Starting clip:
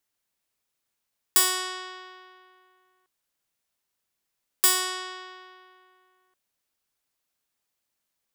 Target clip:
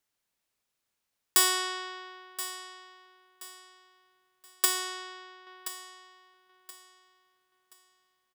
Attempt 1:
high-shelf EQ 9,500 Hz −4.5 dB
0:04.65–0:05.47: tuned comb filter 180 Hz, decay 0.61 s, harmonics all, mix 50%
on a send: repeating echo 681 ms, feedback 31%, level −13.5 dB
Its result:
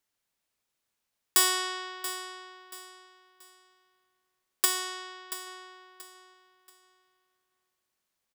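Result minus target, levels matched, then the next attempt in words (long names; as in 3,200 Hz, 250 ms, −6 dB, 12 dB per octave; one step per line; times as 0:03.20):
echo 345 ms early
high-shelf EQ 9,500 Hz −4.5 dB
0:04.65–0:05.47: tuned comb filter 180 Hz, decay 0.61 s, harmonics all, mix 50%
on a send: repeating echo 1,026 ms, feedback 31%, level −13.5 dB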